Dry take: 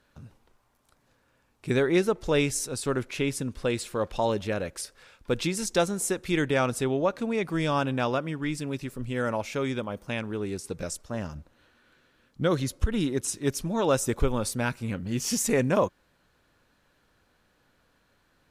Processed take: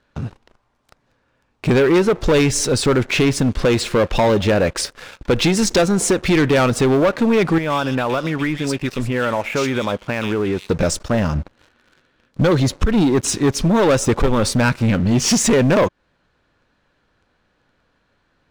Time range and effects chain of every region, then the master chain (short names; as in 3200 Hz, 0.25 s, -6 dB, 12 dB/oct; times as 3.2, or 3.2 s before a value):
7.58–10.7 low shelf 470 Hz -8.5 dB + compressor 5:1, threshold -35 dBFS + bands offset in time lows, highs 0.12 s, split 2700 Hz
whole clip: Bessel low-pass 4500 Hz, order 2; compressor 2:1, threshold -31 dBFS; sample leveller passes 3; gain +9 dB